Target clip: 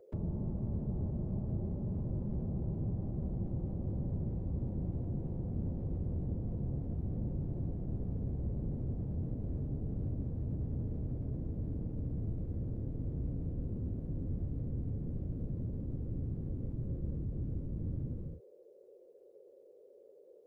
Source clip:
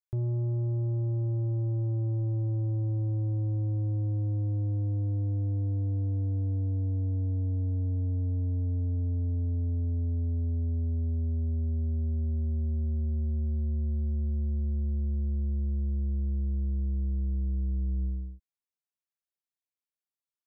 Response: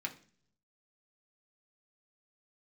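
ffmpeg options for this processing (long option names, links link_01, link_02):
-filter_complex "[0:a]aeval=exprs='val(0)+0.00126*sin(2*PI*470*n/s)':channel_layout=same,acrossover=split=110|560[link_01][link_02][link_03];[link_01]acompressor=threshold=-44dB:ratio=4[link_04];[link_02]acompressor=threshold=-45dB:ratio=4[link_05];[link_03]acompressor=threshold=-57dB:ratio=4[link_06];[link_04][link_05][link_06]amix=inputs=3:normalize=0,afftfilt=real='hypot(re,im)*cos(2*PI*random(0))':imag='hypot(re,im)*sin(2*PI*random(1))':win_size=512:overlap=0.75,volume=8.5dB"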